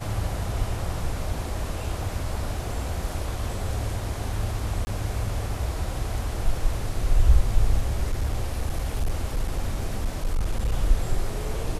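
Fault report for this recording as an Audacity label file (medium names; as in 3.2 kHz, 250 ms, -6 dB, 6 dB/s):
4.850000	4.870000	dropout 20 ms
8.060000	10.740000	clipped -19.5 dBFS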